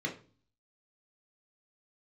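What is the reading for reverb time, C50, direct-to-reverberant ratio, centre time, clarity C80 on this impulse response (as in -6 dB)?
0.40 s, 11.0 dB, -0.5 dB, 16 ms, 17.0 dB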